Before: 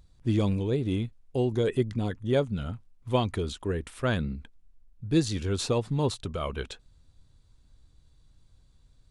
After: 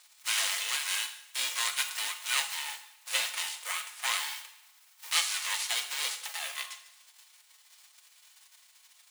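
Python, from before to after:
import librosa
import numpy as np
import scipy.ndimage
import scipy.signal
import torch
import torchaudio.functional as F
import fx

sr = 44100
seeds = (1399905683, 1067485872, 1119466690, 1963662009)

y = fx.envelope_flatten(x, sr, power=0.3)
y = scipy.signal.sosfilt(scipy.signal.butter(6, 1300.0, 'highpass', fs=sr, output='sos'), y)
y = y + 0.49 * np.pad(y, (int(5.2 * sr / 1000.0), 0))[:len(y)]
y = y * np.sin(2.0 * np.pi * 470.0 * np.arange(len(y)) / sr)
y = fx.rev_double_slope(y, sr, seeds[0], early_s=0.75, late_s=2.2, knee_db=-23, drr_db=6.0)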